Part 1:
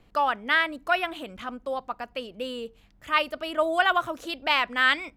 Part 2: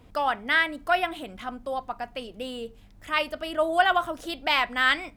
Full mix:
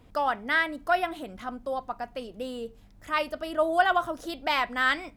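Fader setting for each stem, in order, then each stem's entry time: −11.5, −2.5 decibels; 0.00, 0.00 seconds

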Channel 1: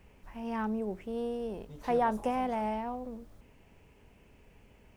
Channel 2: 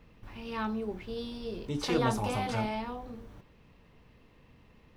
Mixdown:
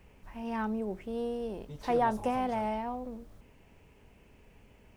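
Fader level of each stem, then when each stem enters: +0.5, −16.5 decibels; 0.00, 0.00 seconds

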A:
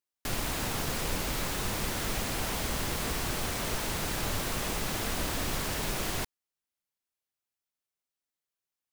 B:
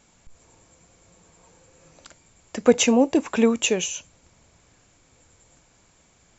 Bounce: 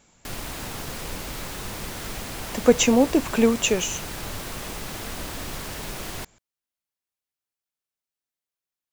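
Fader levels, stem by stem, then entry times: −1.5, 0.0 decibels; 0.00, 0.00 seconds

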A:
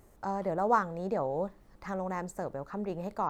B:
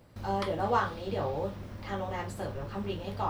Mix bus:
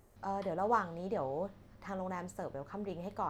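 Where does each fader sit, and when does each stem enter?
−5.0, −17.0 decibels; 0.00, 0.00 seconds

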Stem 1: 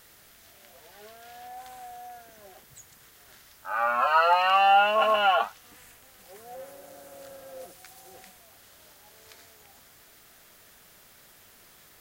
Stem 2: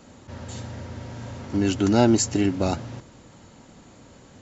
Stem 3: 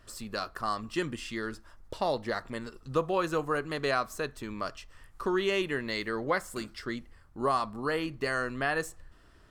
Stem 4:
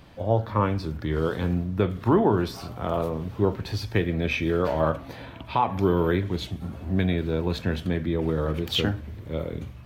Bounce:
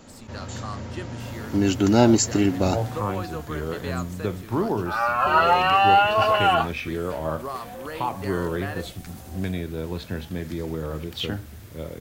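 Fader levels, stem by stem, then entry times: +2.5, +1.5, −5.5, −4.5 decibels; 1.20, 0.00, 0.00, 2.45 seconds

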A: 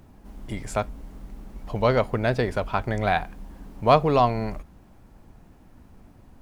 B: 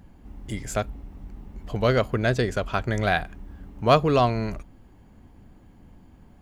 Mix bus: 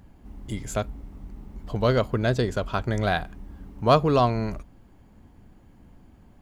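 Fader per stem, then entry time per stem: −10.5, −2.0 decibels; 0.00, 0.00 seconds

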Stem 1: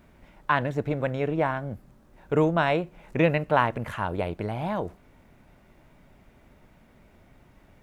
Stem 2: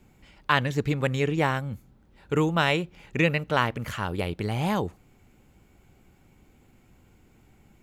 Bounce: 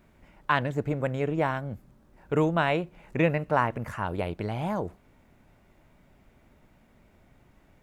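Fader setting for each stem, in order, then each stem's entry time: −4.0, −12.5 decibels; 0.00, 0.00 seconds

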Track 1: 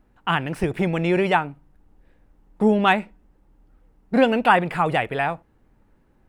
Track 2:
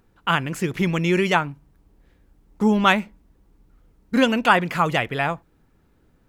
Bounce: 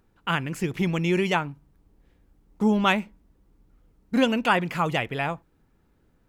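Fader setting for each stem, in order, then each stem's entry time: −16.0, −4.5 decibels; 0.00, 0.00 seconds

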